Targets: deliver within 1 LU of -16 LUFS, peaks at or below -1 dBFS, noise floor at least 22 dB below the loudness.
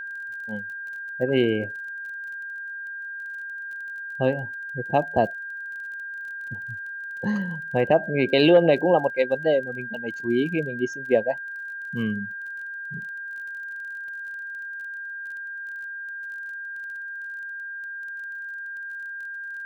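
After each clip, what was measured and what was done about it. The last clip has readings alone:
ticks 27/s; steady tone 1600 Hz; tone level -32 dBFS; loudness -27.0 LUFS; peak -6.5 dBFS; loudness target -16.0 LUFS
-> de-click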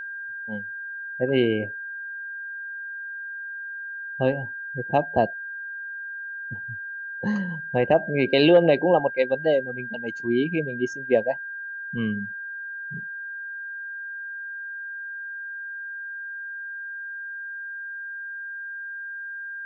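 ticks 0/s; steady tone 1600 Hz; tone level -32 dBFS
-> notch 1600 Hz, Q 30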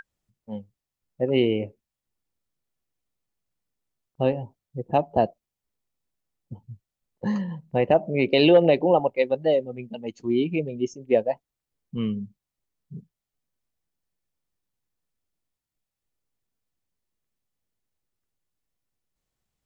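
steady tone none; loudness -23.5 LUFS; peak -6.5 dBFS; loudness target -16.0 LUFS
-> gain +7.5 dB; limiter -1 dBFS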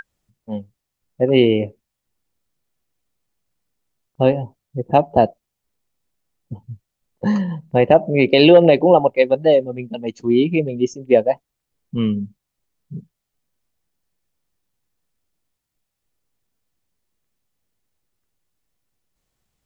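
loudness -16.5 LUFS; peak -1.0 dBFS; noise floor -80 dBFS

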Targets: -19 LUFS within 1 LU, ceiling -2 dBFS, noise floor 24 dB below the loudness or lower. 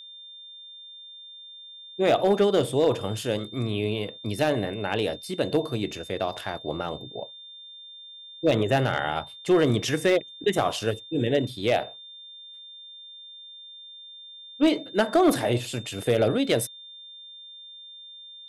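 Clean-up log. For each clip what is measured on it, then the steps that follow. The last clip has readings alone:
clipped 0.3%; flat tops at -13.0 dBFS; steady tone 3600 Hz; tone level -42 dBFS; loudness -25.5 LUFS; peak -13.0 dBFS; loudness target -19.0 LUFS
-> clip repair -13 dBFS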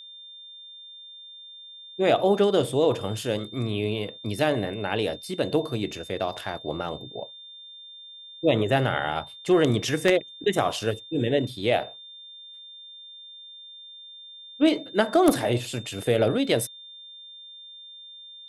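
clipped 0.0%; steady tone 3600 Hz; tone level -42 dBFS
-> notch 3600 Hz, Q 30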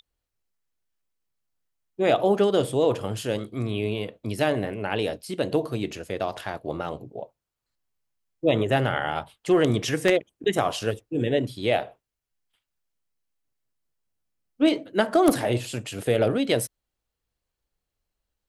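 steady tone none; loudness -25.0 LUFS; peak -4.5 dBFS; loudness target -19.0 LUFS
-> gain +6 dB; limiter -2 dBFS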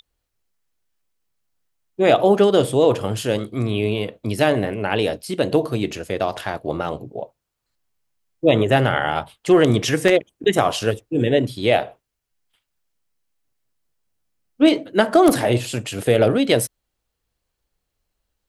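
loudness -19.5 LUFS; peak -2.0 dBFS; noise floor -79 dBFS

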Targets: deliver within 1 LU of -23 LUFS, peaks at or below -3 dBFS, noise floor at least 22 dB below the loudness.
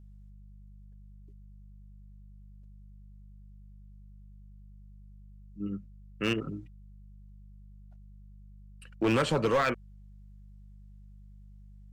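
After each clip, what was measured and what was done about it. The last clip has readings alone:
clipped 0.4%; flat tops at -20.5 dBFS; hum 50 Hz; harmonics up to 200 Hz; hum level -48 dBFS; loudness -30.5 LUFS; peak -20.5 dBFS; loudness target -23.0 LUFS
-> clip repair -20.5 dBFS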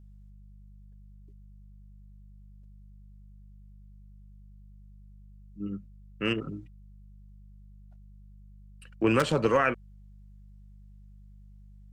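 clipped 0.0%; hum 50 Hz; harmonics up to 200 Hz; hum level -48 dBFS
-> de-hum 50 Hz, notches 4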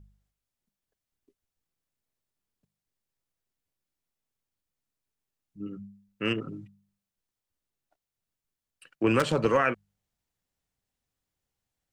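hum none; loudness -27.0 LUFS; peak -11.5 dBFS; loudness target -23.0 LUFS
-> gain +4 dB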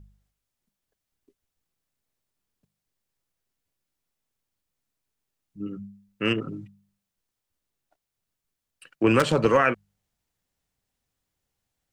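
loudness -23.0 LUFS; peak -7.5 dBFS; noise floor -85 dBFS

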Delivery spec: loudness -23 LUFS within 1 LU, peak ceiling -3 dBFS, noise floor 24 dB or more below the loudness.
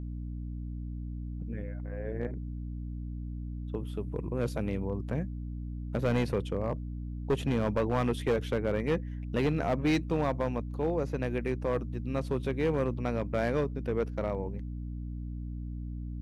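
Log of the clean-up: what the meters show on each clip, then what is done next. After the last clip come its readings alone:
clipped 1.2%; flat tops at -21.5 dBFS; hum 60 Hz; harmonics up to 300 Hz; hum level -35 dBFS; loudness -33.0 LUFS; peak -21.5 dBFS; loudness target -23.0 LUFS
-> clip repair -21.5 dBFS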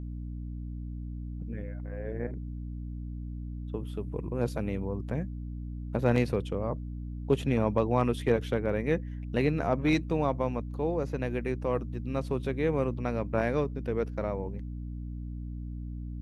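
clipped 0.0%; hum 60 Hz; harmonics up to 300 Hz; hum level -35 dBFS
-> notches 60/120/180/240/300 Hz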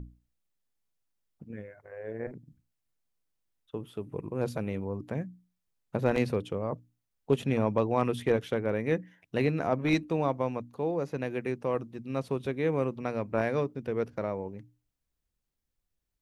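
hum none; loudness -31.5 LUFS; peak -12.0 dBFS; loudness target -23.0 LUFS
-> gain +8.5 dB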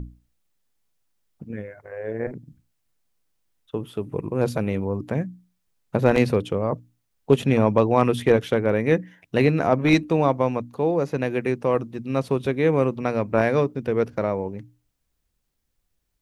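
loudness -23.0 LUFS; peak -3.5 dBFS; noise floor -74 dBFS

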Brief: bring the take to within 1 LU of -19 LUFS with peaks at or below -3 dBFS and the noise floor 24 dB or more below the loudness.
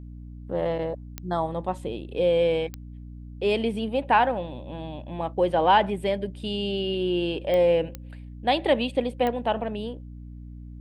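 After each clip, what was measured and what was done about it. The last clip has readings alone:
clicks 5; hum 60 Hz; harmonics up to 300 Hz; hum level -38 dBFS; loudness -25.5 LUFS; peak -7.5 dBFS; loudness target -19.0 LUFS
-> de-click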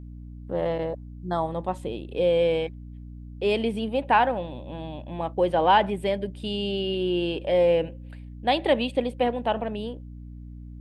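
clicks 0; hum 60 Hz; harmonics up to 300 Hz; hum level -38 dBFS
-> de-hum 60 Hz, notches 5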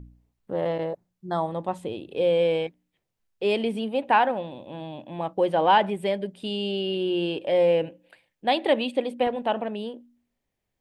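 hum none; loudness -25.5 LUFS; peak -8.0 dBFS; loudness target -19.0 LUFS
-> gain +6.5 dB; limiter -3 dBFS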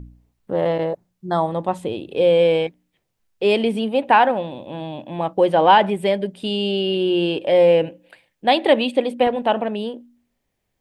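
loudness -19.0 LUFS; peak -3.0 dBFS; noise floor -74 dBFS

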